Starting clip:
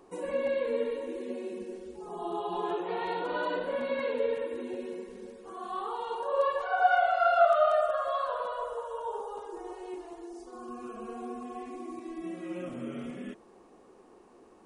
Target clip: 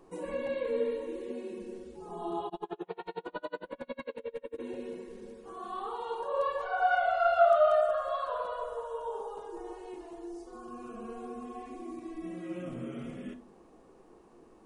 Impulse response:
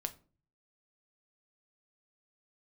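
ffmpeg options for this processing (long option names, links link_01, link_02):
-filter_complex "[0:a]lowshelf=frequency=180:gain=7.5[link_01];[1:a]atrim=start_sample=2205[link_02];[link_01][link_02]afir=irnorm=-1:irlink=0,asplit=3[link_03][link_04][link_05];[link_03]afade=type=out:start_time=2.48:duration=0.02[link_06];[link_04]aeval=exprs='val(0)*pow(10,-36*(0.5-0.5*cos(2*PI*11*n/s))/20)':channel_layout=same,afade=type=in:start_time=2.48:duration=0.02,afade=type=out:start_time=4.58:duration=0.02[link_07];[link_05]afade=type=in:start_time=4.58:duration=0.02[link_08];[link_06][link_07][link_08]amix=inputs=3:normalize=0,volume=-2dB"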